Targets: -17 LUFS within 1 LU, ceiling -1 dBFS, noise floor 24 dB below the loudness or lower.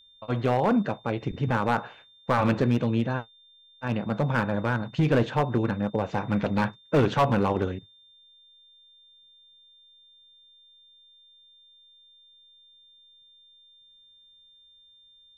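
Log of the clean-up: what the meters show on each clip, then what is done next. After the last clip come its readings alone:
clipped 0.7%; flat tops at -16.0 dBFS; steady tone 3600 Hz; tone level -54 dBFS; loudness -26.0 LUFS; peak -16.0 dBFS; loudness target -17.0 LUFS
-> clip repair -16 dBFS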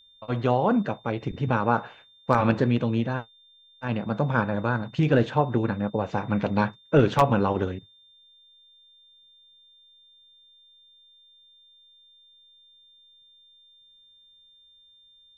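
clipped 0.0%; steady tone 3600 Hz; tone level -54 dBFS
-> notch 3600 Hz, Q 30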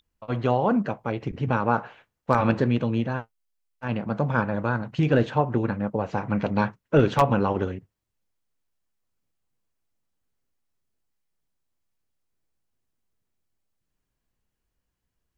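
steady tone none; loudness -25.0 LUFS; peak -7.0 dBFS; loudness target -17.0 LUFS
-> gain +8 dB; limiter -1 dBFS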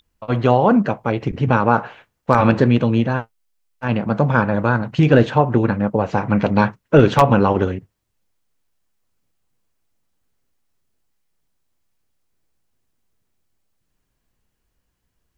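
loudness -17.5 LUFS; peak -1.0 dBFS; noise floor -73 dBFS

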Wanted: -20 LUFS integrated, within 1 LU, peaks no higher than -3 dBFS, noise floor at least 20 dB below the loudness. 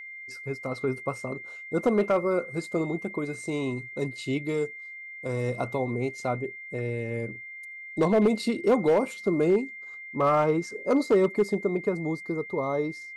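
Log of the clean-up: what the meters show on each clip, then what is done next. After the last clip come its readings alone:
clipped 0.6%; flat tops at -15.5 dBFS; steady tone 2100 Hz; tone level -39 dBFS; loudness -27.5 LUFS; peak -15.5 dBFS; loudness target -20.0 LUFS
-> clip repair -15.5 dBFS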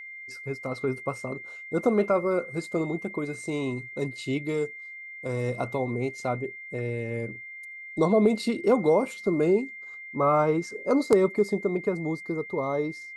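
clipped 0.0%; steady tone 2100 Hz; tone level -39 dBFS
-> notch 2100 Hz, Q 30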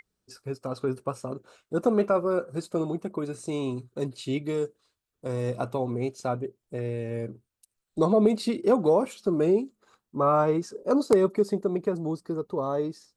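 steady tone none; loudness -27.5 LUFS; peak -6.5 dBFS; loudness target -20.0 LUFS
-> gain +7.5 dB; limiter -3 dBFS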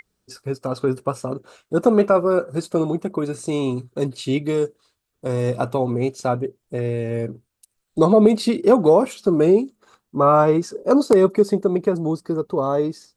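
loudness -20.0 LUFS; peak -3.0 dBFS; noise floor -77 dBFS

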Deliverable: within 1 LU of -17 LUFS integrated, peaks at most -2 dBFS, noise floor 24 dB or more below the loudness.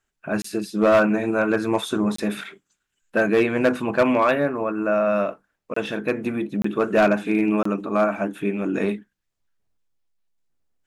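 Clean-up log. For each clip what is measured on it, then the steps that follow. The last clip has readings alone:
clipped 0.5%; flat tops at -11.0 dBFS; dropouts 5; longest dropout 24 ms; loudness -22.0 LUFS; peak -11.0 dBFS; loudness target -17.0 LUFS
-> clip repair -11 dBFS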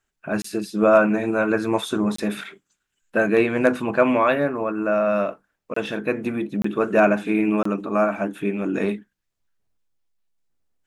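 clipped 0.0%; dropouts 5; longest dropout 24 ms
-> interpolate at 0.42/2.16/5.74/6.62/7.63, 24 ms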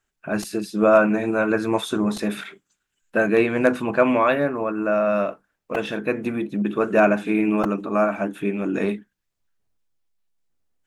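dropouts 0; loudness -22.0 LUFS; peak -3.0 dBFS; loudness target -17.0 LUFS
-> gain +5 dB; limiter -2 dBFS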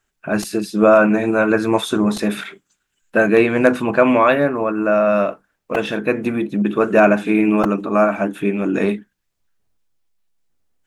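loudness -17.0 LUFS; peak -2.0 dBFS; noise floor -74 dBFS

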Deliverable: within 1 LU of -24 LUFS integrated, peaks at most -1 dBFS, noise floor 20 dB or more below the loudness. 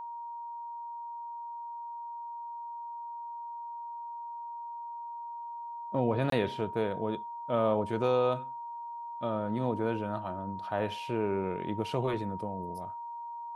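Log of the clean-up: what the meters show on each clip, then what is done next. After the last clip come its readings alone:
dropouts 1; longest dropout 23 ms; steady tone 940 Hz; tone level -38 dBFS; loudness -34.5 LUFS; peak -15.5 dBFS; loudness target -24.0 LUFS
-> interpolate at 6.3, 23 ms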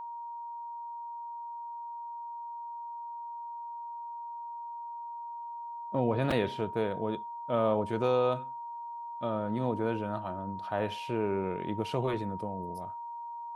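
dropouts 0; steady tone 940 Hz; tone level -38 dBFS
-> notch 940 Hz, Q 30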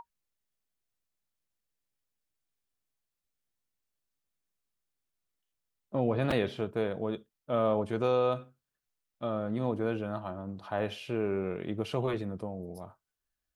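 steady tone none; loudness -32.5 LUFS; peak -15.5 dBFS; loudness target -24.0 LUFS
-> gain +8.5 dB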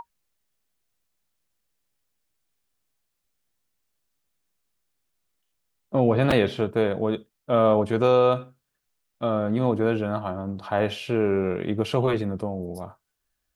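loudness -24.0 LUFS; peak -7.0 dBFS; noise floor -79 dBFS

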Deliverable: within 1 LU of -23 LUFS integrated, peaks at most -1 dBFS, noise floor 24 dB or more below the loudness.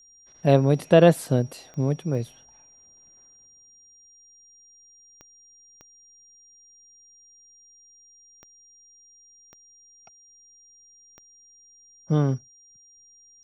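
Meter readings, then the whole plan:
clicks 7; steady tone 5700 Hz; tone level -52 dBFS; loudness -22.0 LUFS; peak -3.5 dBFS; loudness target -23.0 LUFS
-> de-click; notch 5700 Hz, Q 30; gain -1 dB

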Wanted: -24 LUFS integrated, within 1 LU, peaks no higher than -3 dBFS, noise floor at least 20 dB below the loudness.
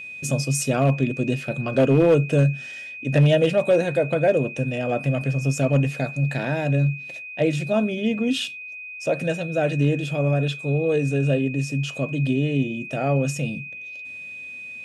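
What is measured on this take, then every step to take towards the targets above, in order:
clipped 0.3%; flat tops at -10.5 dBFS; steady tone 2500 Hz; tone level -34 dBFS; loudness -22.5 LUFS; peak -10.5 dBFS; loudness target -24.0 LUFS
-> clip repair -10.5 dBFS; notch 2500 Hz, Q 30; gain -1.5 dB

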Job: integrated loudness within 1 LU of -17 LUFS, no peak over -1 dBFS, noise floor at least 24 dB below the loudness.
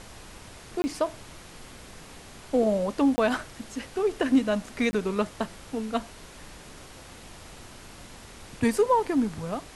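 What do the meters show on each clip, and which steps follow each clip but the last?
dropouts 3; longest dropout 20 ms; noise floor -47 dBFS; noise floor target -51 dBFS; loudness -27.0 LUFS; peak -12.0 dBFS; loudness target -17.0 LUFS
-> interpolate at 0.82/3.16/4.91, 20 ms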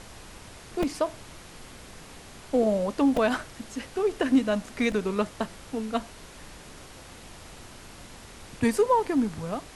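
dropouts 0; noise floor -47 dBFS; noise floor target -51 dBFS
-> noise print and reduce 6 dB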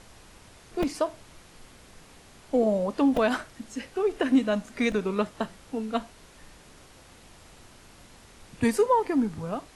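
noise floor -53 dBFS; loudness -27.0 LUFS; peak -12.0 dBFS; loudness target -17.0 LUFS
-> gain +10 dB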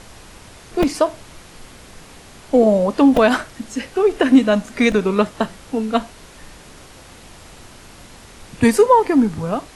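loudness -17.0 LUFS; peak -2.0 dBFS; noise floor -43 dBFS

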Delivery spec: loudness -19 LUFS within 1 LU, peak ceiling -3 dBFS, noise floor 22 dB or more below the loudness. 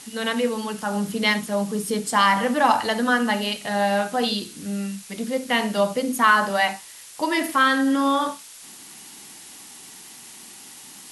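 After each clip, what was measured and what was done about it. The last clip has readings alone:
noise floor -43 dBFS; noise floor target -44 dBFS; loudness -22.0 LUFS; peak -5.0 dBFS; loudness target -19.0 LUFS
-> denoiser 6 dB, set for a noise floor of -43 dBFS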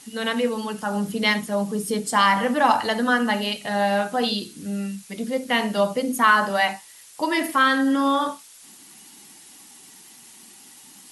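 noise floor -48 dBFS; loudness -22.0 LUFS; peak -5.0 dBFS; loudness target -19.0 LUFS
-> gain +3 dB; limiter -3 dBFS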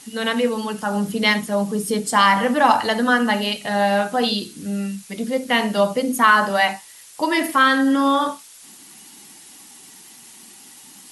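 loudness -19.0 LUFS; peak -3.0 dBFS; noise floor -45 dBFS

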